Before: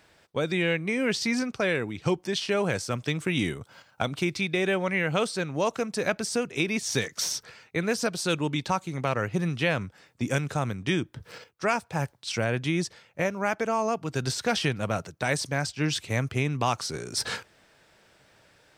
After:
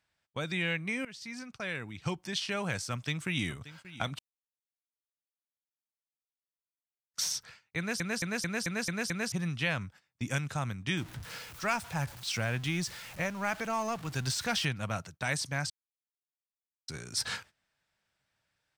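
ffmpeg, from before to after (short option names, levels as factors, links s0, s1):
-filter_complex "[0:a]asplit=2[s0][s1];[s1]afade=t=in:st=2.91:d=0.01,afade=t=out:st=3.5:d=0.01,aecho=0:1:580|1160|1740|2320:0.158489|0.0713202|0.0320941|0.0144423[s2];[s0][s2]amix=inputs=2:normalize=0,asettb=1/sr,asplit=3[s3][s4][s5];[s3]atrim=end=10.974[s6];[s4]atrim=start=10.97:end=14.65,asetpts=PTS-STARTPTS,afade=t=in:d=0.004:c=qsin,afade=t=out:st=3.676:d=0.004:c=qsin,aeval=exprs='val(0)+0.5*0.0133*sgn(val(0))':c=same[s7];[s5]atrim=start=14.646[s8];[s6][s7]acrossfade=d=0.004:c1=hsin:c2=qsin[s9];[s9][s8]acrossfade=d=0.004:c1=qsin:c2=hsin,asplit=13[s10][s11][s12][s13][s14][s15][s16][s17][s18][s19][s20][s21][s22];[s10]atrim=end=1.05,asetpts=PTS-STARTPTS,afade=t=out:st=1.046:d=0.004:c=hsin:silence=0.11885[s23];[s11]atrim=start=1.05:end=4.19,asetpts=PTS-STARTPTS,afade=t=in:d=1.15:silence=0.11885,afade=t=out:st=3.136:d=0.004:c=hsin[s24];[s12]atrim=start=4.19:end=7.14,asetpts=PTS-STARTPTS,volume=0[s25];[s13]atrim=start=7.14:end=8.002,asetpts=PTS-STARTPTS,afade=t=in:d=0.004:c=hsin[s26];[s14]atrim=start=7.778:end=8.002[s27];[s15]atrim=start=7.778:end=8.002[s28];[s16]atrim=start=7.778:end=8.002[s29];[s17]atrim=start=7.778:end=8.002[s30];[s18]atrim=start=7.778:end=8.002[s31];[s19]atrim=start=7.778:end=8.002[s32];[s20]atrim=start=9.318:end=15.7,asetpts=PTS-STARTPTS,afade=t=out:st=6.378:d=0.004:c=hsin[s33];[s21]atrim=start=15.7:end=16.88,asetpts=PTS-STARTPTS,volume=0[s34];[s22]atrim=start=16.88,asetpts=PTS-STARTPTS,afade=t=in:d=0.004:c=hsin[s35];[s23][s24][s25][s26]concat=n=4:v=0:a=1[s36];[s36][s27]acrossfade=d=0.004:c1=hsin:c2=hsin[s37];[s37][s28]acrossfade=d=0.004:c1=hsin:c2=hsin[s38];[s38][s29]acrossfade=d=0.004:c1=hsin:c2=hsin[s39];[s39][s30]acrossfade=d=0.004:c1=hsin:c2=hsin[s40];[s40][s31]acrossfade=d=0.004:c1=hsin:c2=hsin[s41];[s41][s32]acrossfade=d=0.004:c1=hsin:c2=hsin[s42];[s33][s34][s35]concat=n=3:v=0:a=1[s43];[s42][s43]acrossfade=d=0.004:c1=hsin:c2=hsin,equalizer=f=410:w=1:g=-10.5,agate=range=0.158:threshold=0.00398:ratio=16:detection=peak,volume=0.708"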